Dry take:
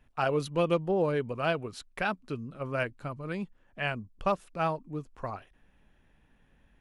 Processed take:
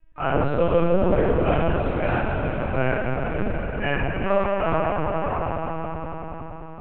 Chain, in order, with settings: low-pass 2.4 kHz 12 dB/octave; hum notches 50/100/150 Hz; echo with a slow build-up 94 ms, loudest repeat 5, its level -13 dB; reverberation, pre-delay 3 ms, DRR -12.5 dB; LPC vocoder at 8 kHz pitch kept; trim -6 dB

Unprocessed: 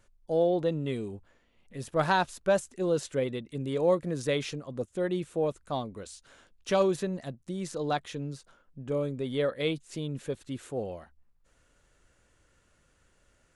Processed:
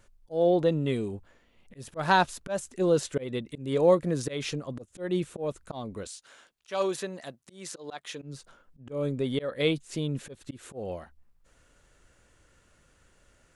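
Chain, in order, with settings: 6.07–8.22 s: high-pass 730 Hz 6 dB/octave; slow attack 191 ms; trim +4 dB

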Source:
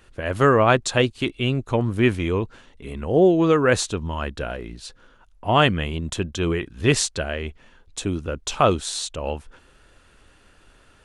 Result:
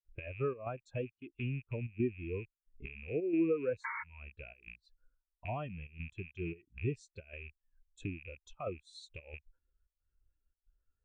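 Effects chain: rattle on loud lows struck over -34 dBFS, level -10 dBFS; gate with hold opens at -45 dBFS; square tremolo 1.5 Hz, depth 60%, duty 80%; painted sound noise, 3.84–4.04 s, 850–2300 Hz -12 dBFS; compression 6:1, threshold -35 dBFS, peak gain reduction 23.5 dB; spectral contrast expander 2.5:1; trim -7 dB

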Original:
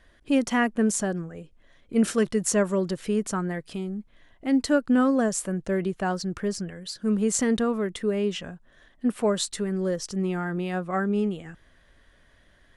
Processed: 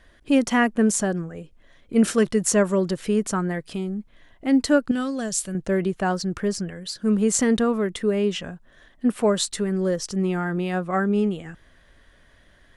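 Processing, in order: 4.91–5.55 s: graphic EQ 250/500/1000/2000/4000 Hz -7/-7/-10/-4/+6 dB; trim +3.5 dB

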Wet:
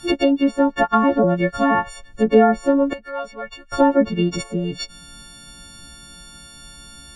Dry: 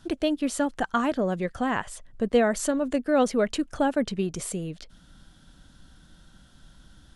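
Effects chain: partials quantised in pitch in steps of 4 st; low-pass that closes with the level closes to 1.1 kHz, closed at -20.5 dBFS; 2.93–3.72 s: amplifier tone stack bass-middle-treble 10-0-10; trim +9 dB

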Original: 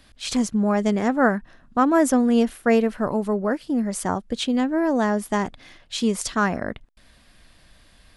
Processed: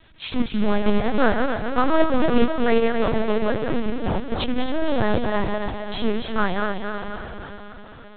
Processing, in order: backward echo that repeats 133 ms, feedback 69%, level -4.5 dB; 3.71–4.30 s: dynamic bell 1.4 kHz, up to -6 dB, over -37 dBFS, Q 0.86; companded quantiser 4-bit; on a send: echo that smears into a reverb 586 ms, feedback 41%, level -11 dB; on the sum: LPC vocoder at 8 kHz pitch kept

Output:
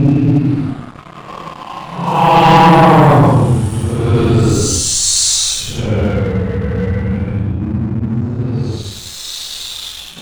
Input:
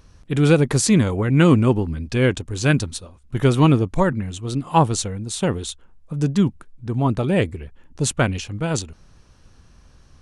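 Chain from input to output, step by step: level-controlled noise filter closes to 2.3 kHz, open at -13 dBFS; Paulstretch 12×, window 0.05 s, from 4.56 s; waveshaping leveller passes 3

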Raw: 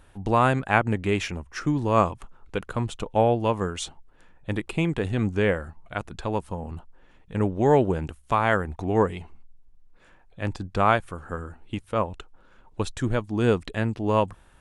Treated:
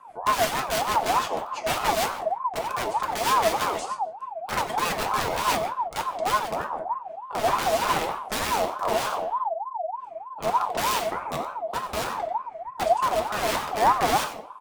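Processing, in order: vibrato 13 Hz 25 cents; graphic EQ with 31 bands 125 Hz -10 dB, 315 Hz +10 dB, 500 Hz +5 dB, 800 Hz +4 dB, 3.15 kHz -10 dB; integer overflow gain 20 dB; bass shelf 260 Hz +5.5 dB; on a send: delay 91 ms -12.5 dB; on the sum: simulated room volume 100 m³, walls mixed, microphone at 0.62 m; rotary cabinet horn 6.3 Hz, later 0.7 Hz, at 7.01 s; comb 4.7 ms, depth 42%; ring modulator with a swept carrier 850 Hz, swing 25%, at 3.3 Hz

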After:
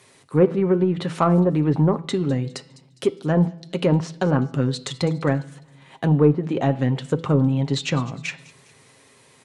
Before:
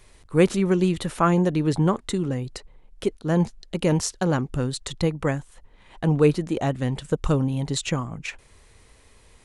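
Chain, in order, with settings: low-pass that closes with the level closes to 970 Hz, closed at -15.5 dBFS; high-pass 120 Hz 24 dB/octave; comb 7.5 ms, depth 33%; de-hum 165.2 Hz, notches 33; in parallel at -6.5 dB: saturation -16 dBFS, distortion -13 dB; on the sum: feedback echo behind a high-pass 204 ms, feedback 44%, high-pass 4 kHz, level -15 dB; on a send at -20.5 dB: reverberation RT60 1.0 s, pre-delay 7 ms

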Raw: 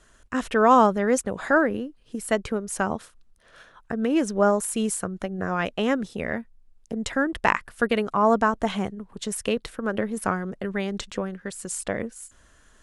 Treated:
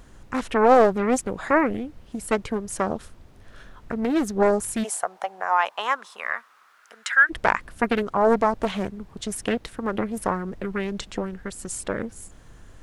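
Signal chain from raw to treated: added noise brown -45 dBFS; 4.83–7.29 s: resonant high-pass 690 Hz -> 1.6 kHz, resonance Q 5.1; loudspeaker Doppler distortion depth 0.47 ms

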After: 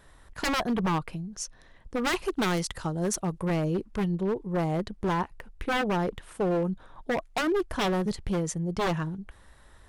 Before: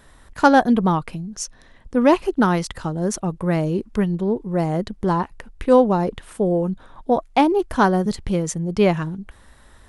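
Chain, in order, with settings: peaking EQ 240 Hz -6.5 dB 0.26 oct; wavefolder -16 dBFS; treble shelf 4.1 kHz -2 dB, from 2.05 s +5 dB, from 3.45 s -2 dB; trim -5 dB

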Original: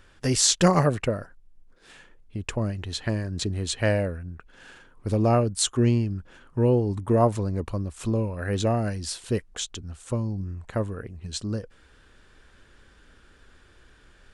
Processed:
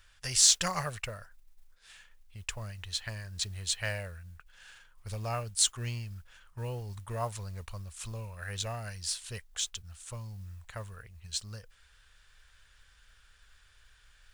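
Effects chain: amplifier tone stack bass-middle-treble 10-0-10; modulation noise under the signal 25 dB

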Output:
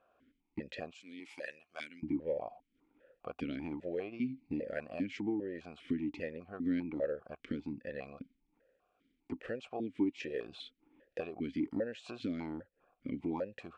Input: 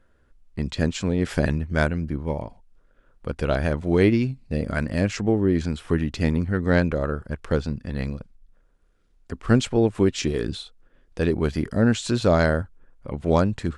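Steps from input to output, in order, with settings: 0.94–2.03 s: differentiator; compression 6:1, threshold -31 dBFS, peak gain reduction 18 dB; stepped vowel filter 5 Hz; trim +9.5 dB

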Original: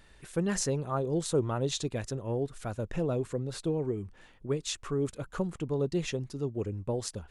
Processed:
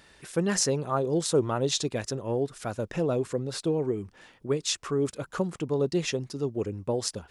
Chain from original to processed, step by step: high-pass 180 Hz 6 dB/octave; peaking EQ 5.2 kHz +4.5 dB 0.37 oct; trim +5 dB

